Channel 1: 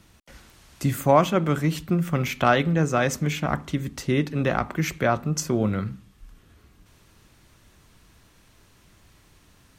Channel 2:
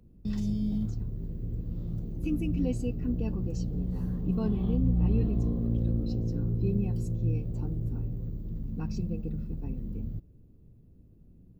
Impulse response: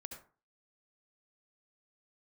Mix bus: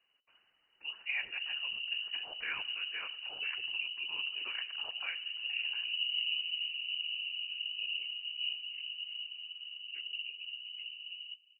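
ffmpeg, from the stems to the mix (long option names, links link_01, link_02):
-filter_complex "[0:a]volume=-13.5dB,asplit=2[link_01][link_02];[link_02]volume=-20dB[link_03];[1:a]adynamicequalizer=threshold=0.00141:dfrequency=1300:dqfactor=1.3:tfrequency=1300:tqfactor=1.3:attack=5:release=100:ratio=0.375:range=2.5:mode=cutabove:tftype=bell,adelay=1150,volume=-4.5dB[link_04];[link_03]aecho=0:1:104|208|312|416|520|624|728:1|0.49|0.24|0.118|0.0576|0.0282|0.0138[link_05];[link_01][link_04][link_05]amix=inputs=3:normalize=0,afftfilt=real='hypot(re,im)*cos(2*PI*random(0))':imag='hypot(re,im)*sin(2*PI*random(1))':win_size=512:overlap=0.75,lowpass=frequency=2600:width_type=q:width=0.5098,lowpass=frequency=2600:width_type=q:width=0.6013,lowpass=frequency=2600:width_type=q:width=0.9,lowpass=frequency=2600:width_type=q:width=2.563,afreqshift=-3000"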